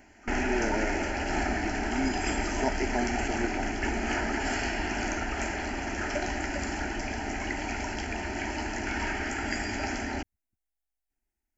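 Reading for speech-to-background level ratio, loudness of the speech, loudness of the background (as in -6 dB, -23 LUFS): -4.0 dB, -35.5 LUFS, -31.5 LUFS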